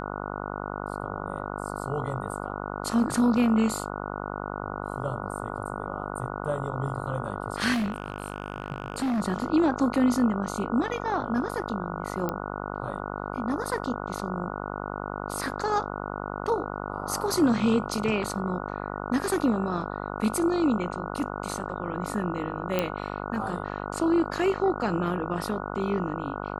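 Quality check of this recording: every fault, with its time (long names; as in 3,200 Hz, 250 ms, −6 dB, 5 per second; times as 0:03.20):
mains buzz 50 Hz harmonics 29 −34 dBFS
0:07.73–0:09.21: clipping −24 dBFS
0:12.29: click −15 dBFS
0:22.79: click −11 dBFS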